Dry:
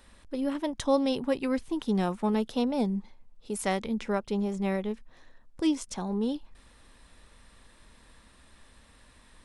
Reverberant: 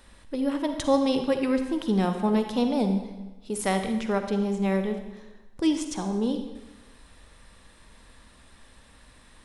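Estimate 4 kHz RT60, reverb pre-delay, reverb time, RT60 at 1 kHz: 1.0 s, 40 ms, 1.1 s, 1.1 s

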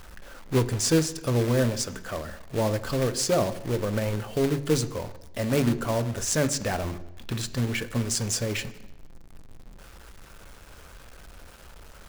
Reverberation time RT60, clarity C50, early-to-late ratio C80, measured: 0.90 s, 15.5 dB, 18.0 dB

